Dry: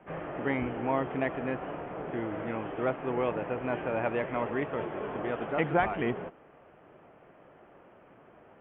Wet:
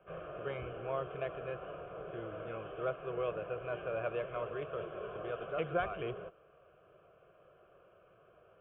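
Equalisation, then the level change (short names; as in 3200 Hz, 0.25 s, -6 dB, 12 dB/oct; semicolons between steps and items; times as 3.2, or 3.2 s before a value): fixed phaser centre 1300 Hz, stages 8; -4.5 dB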